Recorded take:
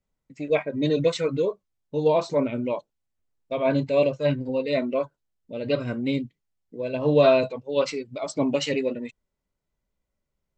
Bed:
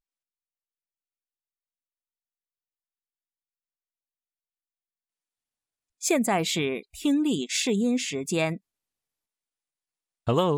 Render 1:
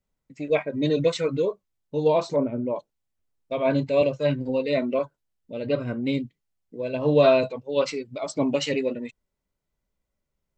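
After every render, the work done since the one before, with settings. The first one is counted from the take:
0:02.36–0:02.76: low-pass filter 1,000 Hz
0:04.01–0:04.99: multiband upward and downward compressor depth 40%
0:05.66–0:06.07: high-shelf EQ 3,300 Hz −10 dB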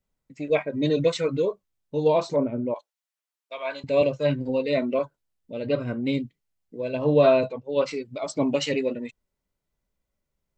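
0:02.74–0:03.84: high-pass filter 1,000 Hz
0:07.04–0:07.91: high-shelf EQ 3,100 Hz −7.5 dB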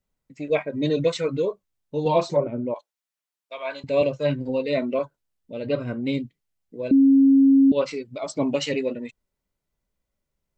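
0:02.05–0:02.47: comb filter 5.6 ms, depth 88%
0:06.91–0:07.72: beep over 272 Hz −11.5 dBFS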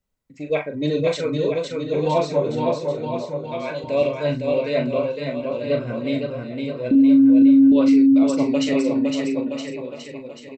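double-tracking delay 40 ms −7.5 dB
bouncing-ball delay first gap 510 ms, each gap 0.9×, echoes 5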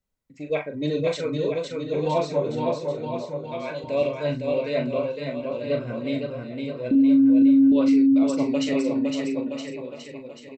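level −3.5 dB

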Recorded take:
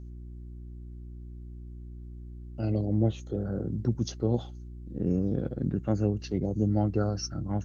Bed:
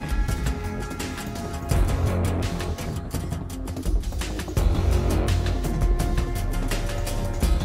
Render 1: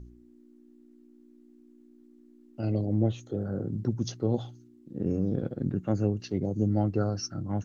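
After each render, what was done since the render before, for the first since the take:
hum removal 60 Hz, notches 3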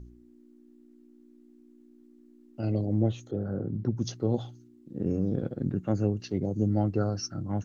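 0:03.31–0:03.97: Bessel low-pass filter 3,500 Hz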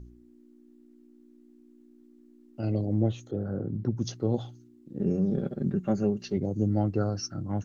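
0:04.99–0:06.37: comb filter 5.1 ms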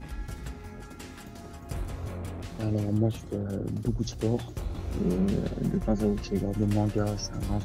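mix in bed −13 dB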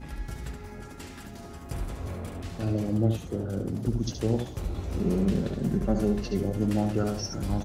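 single-tap delay 72 ms −6.5 dB
feedback echo with a swinging delay time 382 ms, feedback 78%, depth 188 cents, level −21 dB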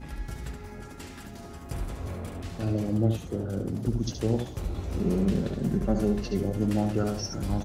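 no processing that can be heard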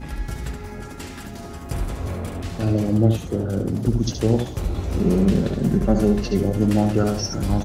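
level +7.5 dB

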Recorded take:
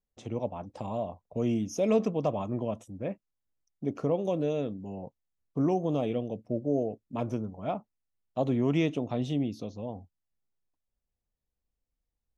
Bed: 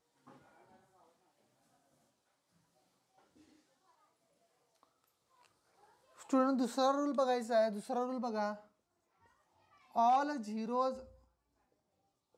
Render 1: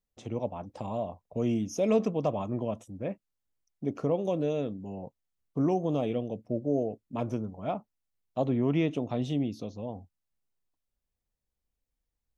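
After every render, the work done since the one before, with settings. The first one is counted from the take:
0:08.46–0:08.91: high-frequency loss of the air 160 metres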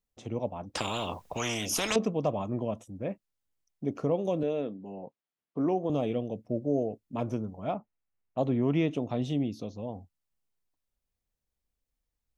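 0:00.75–0:01.96: every bin compressed towards the loudest bin 4 to 1
0:04.43–0:05.90: band-pass filter 210–3,500 Hz
0:07.75–0:08.38: Butterworth low-pass 2,700 Hz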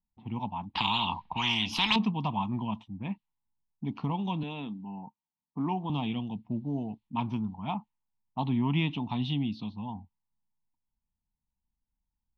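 low-pass that shuts in the quiet parts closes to 640 Hz, open at −27.5 dBFS
drawn EQ curve 110 Hz 0 dB, 210 Hz +5 dB, 560 Hz −22 dB, 910 Hz +12 dB, 1,400 Hz −7 dB, 2,900 Hz +9 dB, 4,200 Hz +7 dB, 6,600 Hz −18 dB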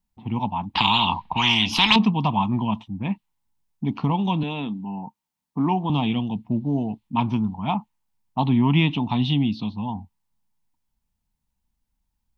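level +9 dB

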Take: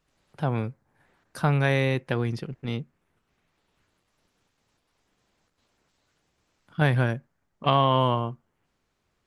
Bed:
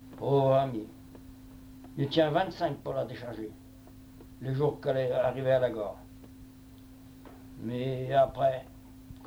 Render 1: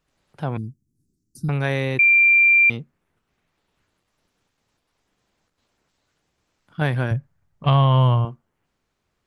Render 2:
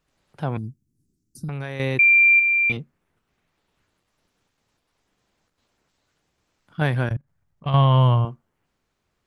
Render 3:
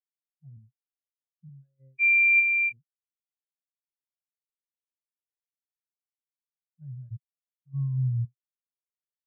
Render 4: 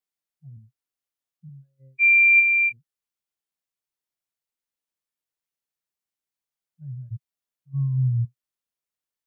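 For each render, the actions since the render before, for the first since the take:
0:00.57–0:01.49: inverse Chebyshev band-stop filter 560–3,200 Hz; 0:01.99–0:02.70: beep over 2,370 Hz −11 dBFS; 0:07.11–0:08.25: low shelf with overshoot 180 Hz +9.5 dB, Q 1.5
0:00.58–0:01.80: downward compressor, threshold −26 dBFS; 0:02.37–0:02.77: double-tracking delay 23 ms −7 dB; 0:07.09–0:07.74: output level in coarse steps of 23 dB
reversed playback; downward compressor 5 to 1, threshold −24 dBFS, peak gain reduction 10 dB; reversed playback; every bin expanded away from the loudest bin 4 to 1
level +4.5 dB

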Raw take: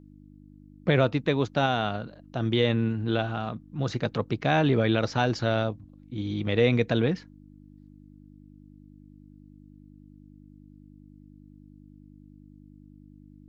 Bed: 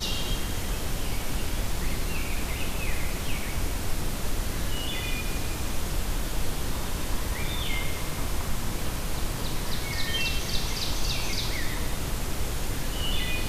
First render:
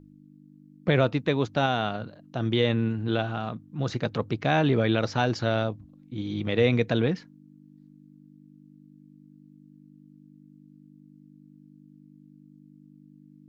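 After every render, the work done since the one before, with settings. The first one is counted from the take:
hum removal 50 Hz, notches 2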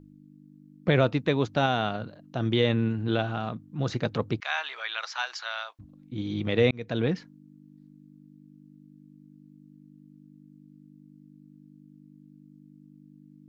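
0:04.40–0:05.79: high-pass filter 1,000 Hz 24 dB per octave
0:06.71–0:07.12: fade in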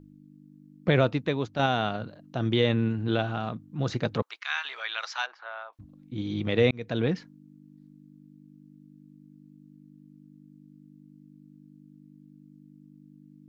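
0:00.99–0:01.59: fade out, to −6.5 dB
0:04.22–0:04.65: high-pass filter 1,000 Hz 24 dB per octave
0:05.26–0:05.73: low-pass filter 1,200 Hz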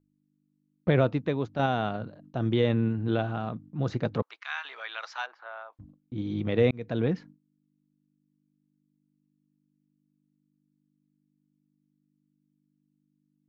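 noise gate with hold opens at −41 dBFS
high-shelf EQ 2,100 Hz −10 dB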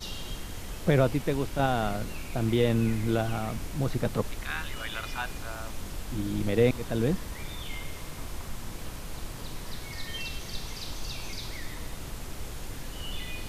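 mix in bed −8.5 dB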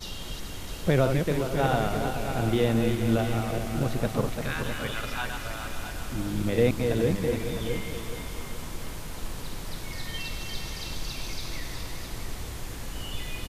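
feedback delay that plays each chunk backwards 211 ms, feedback 61%, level −5.5 dB
single-tap delay 658 ms −9 dB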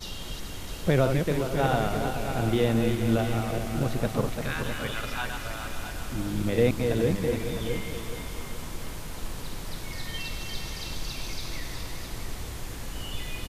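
no processing that can be heard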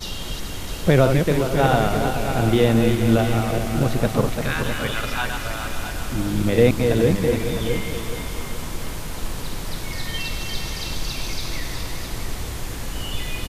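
level +7 dB

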